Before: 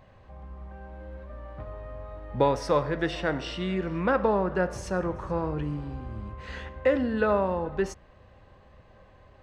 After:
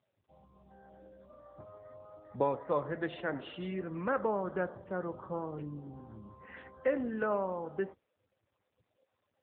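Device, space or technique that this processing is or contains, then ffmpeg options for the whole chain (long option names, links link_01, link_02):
mobile call with aggressive noise cancelling: -af "highpass=frequency=160:poles=1,afftdn=noise_reduction=28:noise_floor=-43,volume=-6.5dB" -ar 8000 -c:a libopencore_amrnb -b:a 7950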